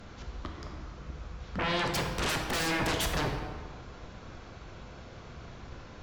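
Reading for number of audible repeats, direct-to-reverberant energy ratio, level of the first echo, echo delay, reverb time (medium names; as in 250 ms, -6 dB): no echo, 2.0 dB, no echo, no echo, 1.7 s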